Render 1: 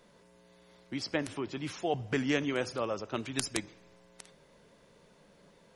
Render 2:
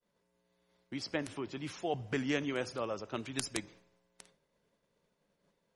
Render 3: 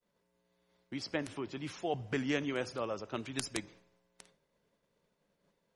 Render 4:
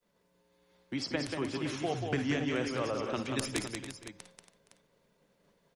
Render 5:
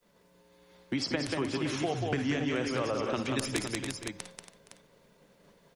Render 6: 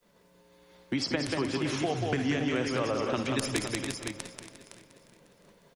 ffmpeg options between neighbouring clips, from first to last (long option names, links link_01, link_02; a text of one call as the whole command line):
ffmpeg -i in.wav -af "agate=range=-33dB:threshold=-51dB:ratio=3:detection=peak,volume=-3.5dB" out.wav
ffmpeg -i in.wav -af "highshelf=frequency=8800:gain=-3.5" out.wav
ffmpeg -i in.wav -filter_complex "[0:a]acrossover=split=160[link_01][link_02];[link_02]acompressor=threshold=-35dB:ratio=6[link_03];[link_01][link_03]amix=inputs=2:normalize=0,asplit=2[link_04][link_05];[link_05]aecho=0:1:56|60|186|280|468|512:0.224|0.1|0.562|0.251|0.106|0.282[link_06];[link_04][link_06]amix=inputs=2:normalize=0,volume=5dB" out.wav
ffmpeg -i in.wav -af "acompressor=threshold=-38dB:ratio=3,volume=8.5dB" out.wav
ffmpeg -i in.wav -af "aecho=1:1:354|708|1062|1416:0.178|0.0836|0.0393|0.0185,volume=1.5dB" out.wav